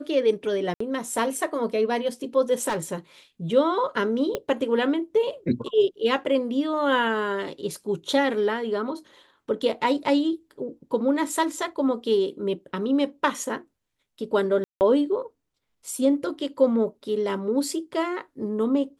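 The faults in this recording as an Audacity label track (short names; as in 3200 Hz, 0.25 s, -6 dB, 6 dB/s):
0.740000	0.800000	gap 64 ms
2.680000	2.960000	clipped -22.5 dBFS
4.350000	4.350000	pop -13 dBFS
14.640000	14.810000	gap 0.169 s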